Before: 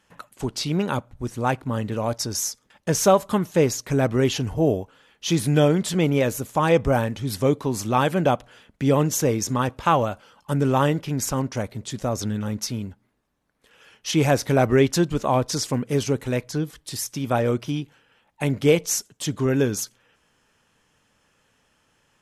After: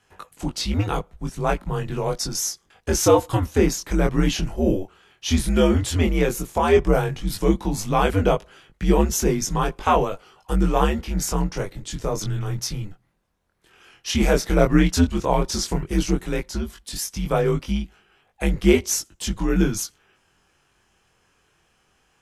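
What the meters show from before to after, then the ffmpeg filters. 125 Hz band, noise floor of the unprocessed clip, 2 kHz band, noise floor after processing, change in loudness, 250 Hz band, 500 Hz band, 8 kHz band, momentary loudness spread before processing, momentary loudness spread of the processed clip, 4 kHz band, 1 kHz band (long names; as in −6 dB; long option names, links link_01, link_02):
−0.5 dB, −67 dBFS, +0.5 dB, −65 dBFS, +0.5 dB, +1.0 dB, 0.0 dB, +1.0 dB, 11 LU, 11 LU, +1.0 dB, 0.0 dB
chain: -af "afreqshift=-91,flanger=delay=20:depth=4.2:speed=0.11,volume=4dB"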